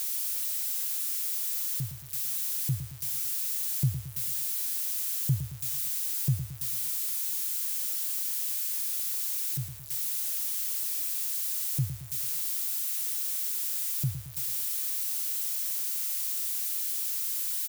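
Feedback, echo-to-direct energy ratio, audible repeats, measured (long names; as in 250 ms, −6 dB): 50%, −9.5 dB, 5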